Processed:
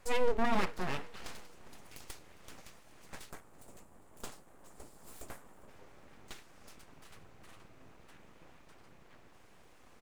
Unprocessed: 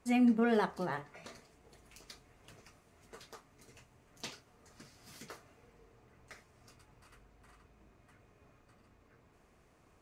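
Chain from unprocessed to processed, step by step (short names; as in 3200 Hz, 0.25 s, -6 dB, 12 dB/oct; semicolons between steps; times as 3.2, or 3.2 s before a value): spectral gain 3.3–5.68, 1200–6900 Hz -13 dB; in parallel at +1 dB: compressor, threshold -46 dBFS, peak gain reduction 20.5 dB; on the sum: full-wave rectifier; feedback echo 0.406 s, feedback 45%, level -22 dB; gain +1 dB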